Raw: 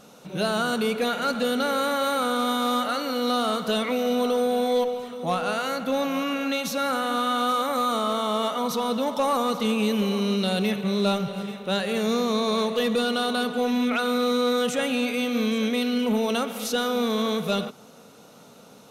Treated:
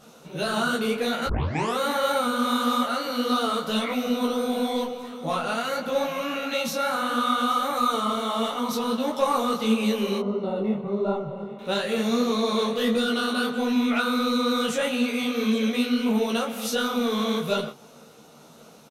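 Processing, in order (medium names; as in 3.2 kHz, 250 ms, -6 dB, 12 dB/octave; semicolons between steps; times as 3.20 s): 1.26 s: tape start 0.52 s; 10.18–11.59 s: Savitzky-Golay filter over 65 samples; doubling 13 ms -4 dB; detune thickener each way 53 cents; trim +2 dB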